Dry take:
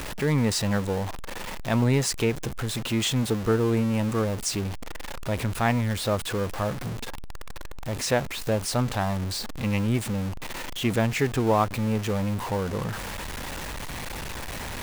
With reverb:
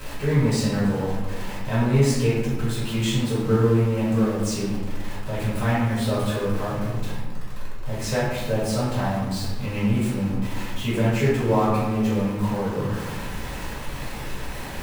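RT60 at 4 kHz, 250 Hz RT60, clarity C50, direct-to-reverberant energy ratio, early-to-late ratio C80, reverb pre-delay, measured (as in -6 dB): 0.70 s, 2.1 s, -0.5 dB, -11.0 dB, 3.0 dB, 3 ms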